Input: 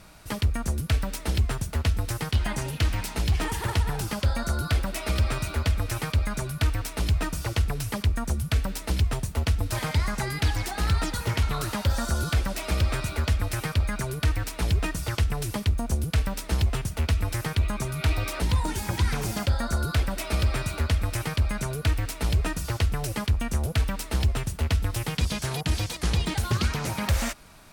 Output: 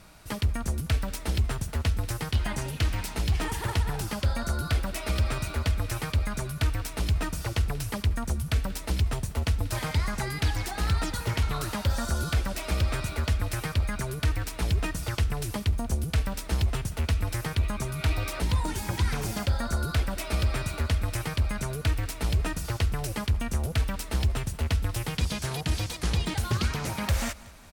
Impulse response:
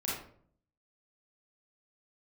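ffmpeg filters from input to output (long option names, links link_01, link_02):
-af "aecho=1:1:186|372|558|744:0.0891|0.0463|0.0241|0.0125,volume=-2dB"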